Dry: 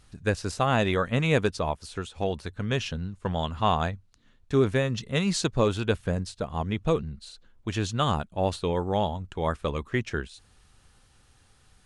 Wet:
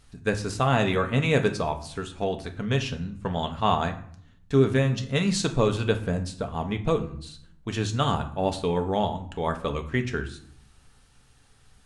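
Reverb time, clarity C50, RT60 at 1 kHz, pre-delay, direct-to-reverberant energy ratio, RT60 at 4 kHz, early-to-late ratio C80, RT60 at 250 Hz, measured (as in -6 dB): 0.60 s, 13.0 dB, 0.60 s, 4 ms, 5.5 dB, 0.40 s, 16.5 dB, 0.90 s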